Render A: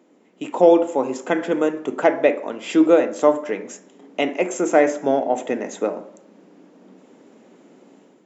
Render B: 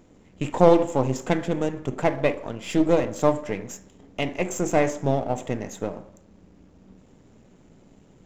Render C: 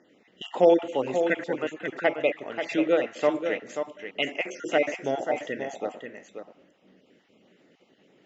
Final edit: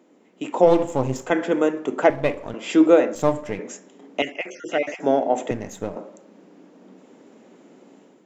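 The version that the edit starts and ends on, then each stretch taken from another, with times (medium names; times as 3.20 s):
A
0.68–1.27 s: from B, crossfade 0.10 s
2.10–2.54 s: from B
3.15–3.59 s: from B
4.22–5.00 s: from C
5.51–5.96 s: from B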